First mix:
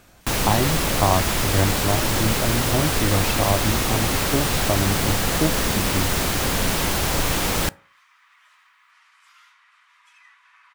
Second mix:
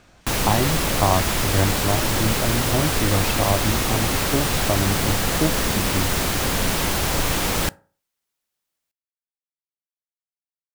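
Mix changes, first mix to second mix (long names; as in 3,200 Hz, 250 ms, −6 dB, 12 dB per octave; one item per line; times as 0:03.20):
speech: add low-pass filter 6,800 Hz
second sound: muted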